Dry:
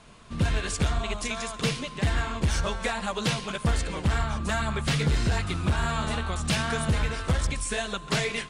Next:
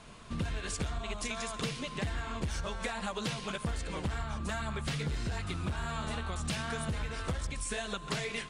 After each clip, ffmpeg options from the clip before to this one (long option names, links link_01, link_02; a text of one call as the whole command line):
ffmpeg -i in.wav -af "acompressor=threshold=-33dB:ratio=5" out.wav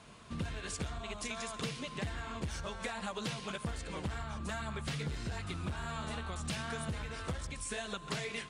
ffmpeg -i in.wav -af "highpass=53,volume=-3dB" out.wav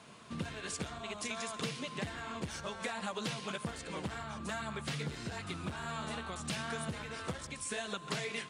ffmpeg -i in.wav -af "highpass=130,volume=1dB" out.wav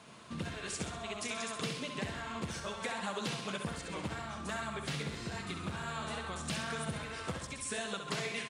ffmpeg -i in.wav -af "aecho=1:1:66|132|198|264|330|396|462:0.447|0.241|0.13|0.0703|0.038|0.0205|0.0111" out.wav